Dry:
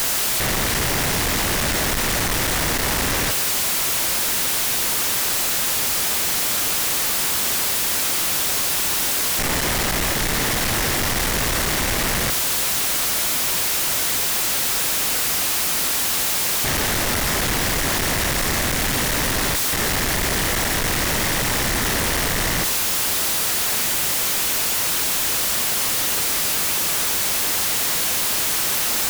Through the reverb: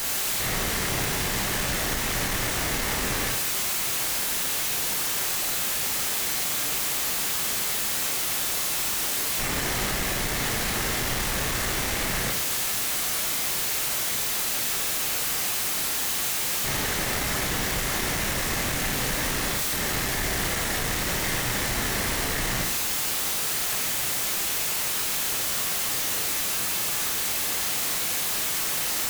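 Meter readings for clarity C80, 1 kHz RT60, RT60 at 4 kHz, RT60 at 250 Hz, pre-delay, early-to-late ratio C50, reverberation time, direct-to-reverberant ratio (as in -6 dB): 10.5 dB, 0.50 s, 0.50 s, 0.55 s, 26 ms, 6.5 dB, 0.50 s, 0.0 dB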